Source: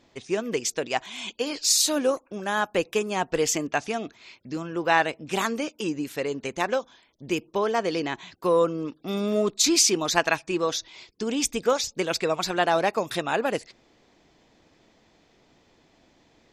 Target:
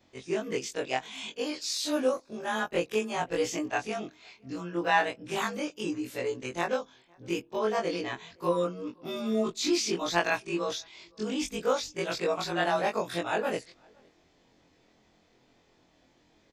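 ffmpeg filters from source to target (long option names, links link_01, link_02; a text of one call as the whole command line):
ffmpeg -i in.wav -filter_complex "[0:a]afftfilt=real='re':imag='-im':win_size=2048:overlap=0.75,acrossover=split=4500[link_01][link_02];[link_02]acompressor=threshold=-40dB:ratio=4:attack=1:release=60[link_03];[link_01][link_03]amix=inputs=2:normalize=0,asplit=2[link_04][link_05];[link_05]adelay=513.1,volume=-30dB,highshelf=frequency=4000:gain=-11.5[link_06];[link_04][link_06]amix=inputs=2:normalize=0" out.wav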